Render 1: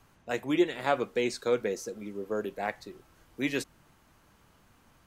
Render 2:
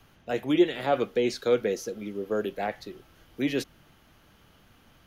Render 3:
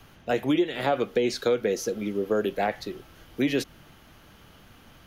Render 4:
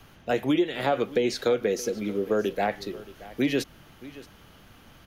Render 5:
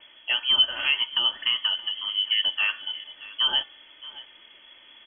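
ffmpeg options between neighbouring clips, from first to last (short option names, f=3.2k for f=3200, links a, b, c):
-filter_complex "[0:a]equalizer=f=1k:t=o:w=0.33:g=-6,equalizer=f=3.15k:t=o:w=0.33:g=6,equalizer=f=8k:t=o:w=0.33:g=-11,acrossover=split=700|830[a][b][c];[c]alimiter=level_in=6.5dB:limit=-24dB:level=0:latency=1:release=22,volume=-6.5dB[d];[a][b][d]amix=inputs=3:normalize=0,volume=4dB"
-af "acompressor=threshold=-26dB:ratio=6,volume=6dB"
-af "aecho=1:1:625:0.119"
-af "bandreject=f=324.8:t=h:w=4,bandreject=f=649.6:t=h:w=4,bandreject=f=974.4:t=h:w=4,bandreject=f=1.2992k:t=h:w=4,bandreject=f=1.624k:t=h:w=4,bandreject=f=1.9488k:t=h:w=4,bandreject=f=2.2736k:t=h:w=4,bandreject=f=2.5984k:t=h:w=4,bandreject=f=2.9232k:t=h:w=4,bandreject=f=3.248k:t=h:w=4,bandreject=f=3.5728k:t=h:w=4,bandreject=f=3.8976k:t=h:w=4,bandreject=f=4.2224k:t=h:w=4,bandreject=f=4.5472k:t=h:w=4,bandreject=f=4.872k:t=h:w=4,bandreject=f=5.1968k:t=h:w=4,bandreject=f=5.5216k:t=h:w=4,bandreject=f=5.8464k:t=h:w=4,bandreject=f=6.1712k:t=h:w=4,bandreject=f=6.496k:t=h:w=4,bandreject=f=6.8208k:t=h:w=4,bandreject=f=7.1456k:t=h:w=4,bandreject=f=7.4704k:t=h:w=4,bandreject=f=7.7952k:t=h:w=4,bandreject=f=8.12k:t=h:w=4,bandreject=f=8.4448k:t=h:w=4,bandreject=f=8.7696k:t=h:w=4,bandreject=f=9.0944k:t=h:w=4,bandreject=f=9.4192k:t=h:w=4,bandreject=f=9.744k:t=h:w=4,bandreject=f=10.0688k:t=h:w=4,bandreject=f=10.3936k:t=h:w=4,bandreject=f=10.7184k:t=h:w=4,bandreject=f=11.0432k:t=h:w=4,bandreject=f=11.368k:t=h:w=4,bandreject=f=11.6928k:t=h:w=4,bandreject=f=12.0176k:t=h:w=4,lowpass=f=2.9k:t=q:w=0.5098,lowpass=f=2.9k:t=q:w=0.6013,lowpass=f=2.9k:t=q:w=0.9,lowpass=f=2.9k:t=q:w=2.563,afreqshift=-3400,aecho=1:1:3.3:0.49"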